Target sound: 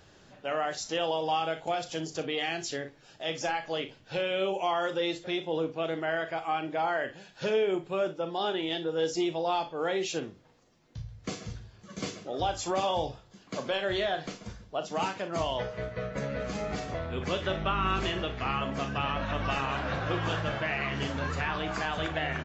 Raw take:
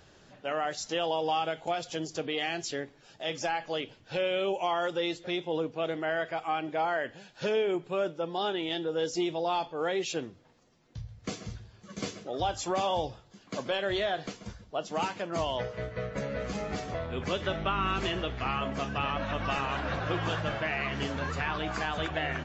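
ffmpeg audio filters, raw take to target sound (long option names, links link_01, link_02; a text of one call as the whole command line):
ffmpeg -i in.wav -af "aecho=1:1:37|58:0.282|0.188" out.wav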